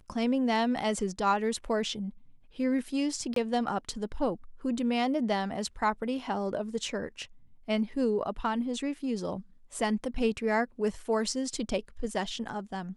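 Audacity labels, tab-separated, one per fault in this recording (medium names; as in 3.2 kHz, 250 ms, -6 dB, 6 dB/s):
3.340000	3.360000	dropout 23 ms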